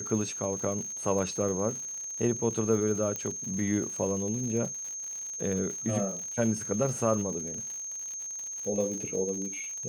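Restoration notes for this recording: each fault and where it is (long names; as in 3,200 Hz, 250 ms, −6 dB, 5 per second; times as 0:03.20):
surface crackle 120 per second −37 dBFS
whistle 6,400 Hz −35 dBFS
0:03.16: click −19 dBFS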